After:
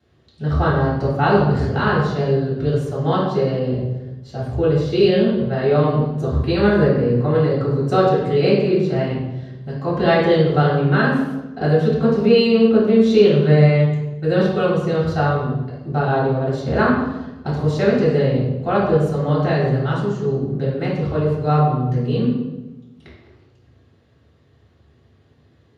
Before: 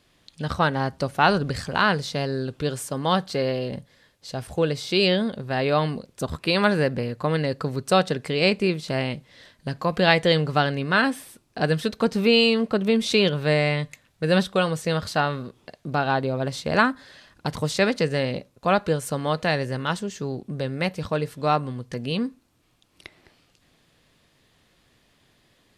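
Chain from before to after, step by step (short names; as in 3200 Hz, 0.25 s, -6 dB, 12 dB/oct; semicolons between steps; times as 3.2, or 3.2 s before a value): 9.04–9.75 compressor 1.5:1, threshold -34 dBFS, peak gain reduction 4 dB; reverb RT60 1.1 s, pre-delay 3 ms, DRR -10 dB; gain -16.5 dB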